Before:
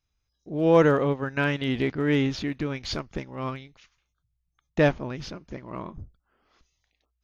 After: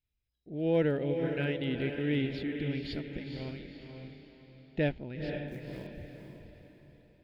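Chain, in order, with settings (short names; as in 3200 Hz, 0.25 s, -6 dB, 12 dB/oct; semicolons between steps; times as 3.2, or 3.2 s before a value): fixed phaser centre 2700 Hz, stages 4; 5.46–5.87 companded quantiser 6-bit; diffused feedback echo 0.486 s, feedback 41%, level -5.5 dB; gain -7 dB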